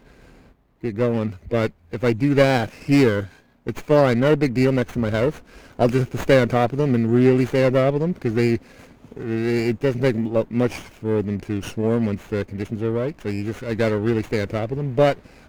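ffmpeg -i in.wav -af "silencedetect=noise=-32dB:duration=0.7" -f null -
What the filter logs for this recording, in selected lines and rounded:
silence_start: 0.00
silence_end: 0.83 | silence_duration: 0.83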